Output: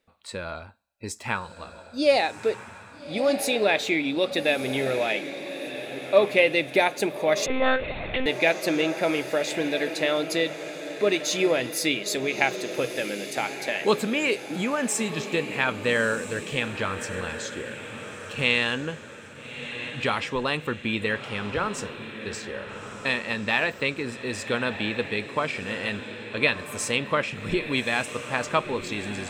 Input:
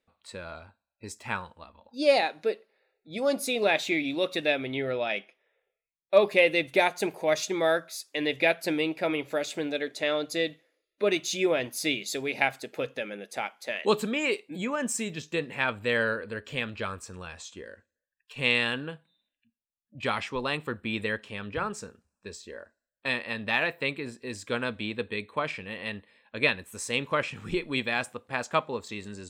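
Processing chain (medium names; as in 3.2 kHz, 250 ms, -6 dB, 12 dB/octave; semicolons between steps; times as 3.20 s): in parallel at +1 dB: compression, threshold -33 dBFS, peak gain reduction 18 dB; on the sum: echo that smears into a reverb 1279 ms, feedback 47%, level -10 dB; 7.46–8.26 s: monotone LPC vocoder at 8 kHz 260 Hz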